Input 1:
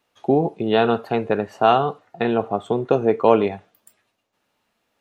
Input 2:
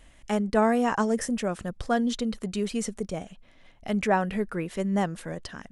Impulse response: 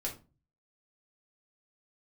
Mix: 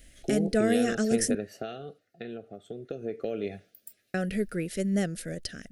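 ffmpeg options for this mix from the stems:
-filter_complex "[0:a]acompressor=threshold=-20dB:ratio=10,volume=4.5dB,afade=t=out:st=1.35:d=0.66:silence=0.354813,afade=t=in:st=2.81:d=0.62:silence=0.334965[a];[1:a]volume=-0.5dB,asplit=3[b][c][d];[b]atrim=end=1.35,asetpts=PTS-STARTPTS,afade=t=out:st=1.346:d=0.004:c=hsin[e];[c]atrim=start=1.35:end=4.14,asetpts=PTS-STARTPTS,volume=0[f];[d]atrim=start=4.14,asetpts=PTS-STARTPTS,afade=t=in:d=0.004:c=hsin[g];[e][f][g]concat=n=3:v=0:a=1[h];[a][h]amix=inputs=2:normalize=0,aexciter=amount=2.8:drive=1.4:freq=4.3k,asuperstop=centerf=970:order=4:qfactor=1.1"

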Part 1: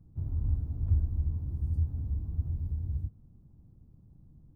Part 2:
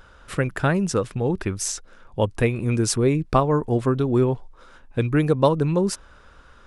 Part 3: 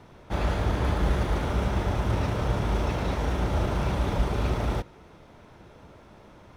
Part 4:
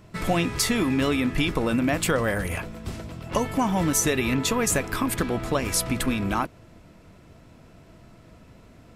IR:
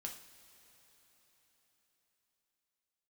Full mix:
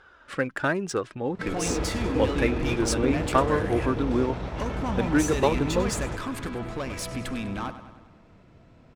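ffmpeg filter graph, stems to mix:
-filter_complex "[0:a]aeval=exprs='val(0)*sin(2*PI*390*n/s)':c=same,adelay=1250,volume=-0.5dB[a];[1:a]highpass=f=220:p=1,equalizer=f=1.6k:t=o:w=0.44:g=4,flanger=delay=2.4:depth=1.6:regen=40:speed=1.1:shape=triangular,volume=1dB[b];[2:a]adelay=1350,volume=-6dB[c];[3:a]asoftclip=type=tanh:threshold=-21.5dB,adelay=1250,volume=-4dB,asplit=2[d][e];[e]volume=-12dB,aecho=0:1:99|198|297|396|495|594|693|792|891:1|0.58|0.336|0.195|0.113|0.0656|0.0381|0.0221|0.0128[f];[a][b][c][d][f]amix=inputs=5:normalize=0,adynamicsmooth=sensitivity=6.5:basefreq=5.3k"

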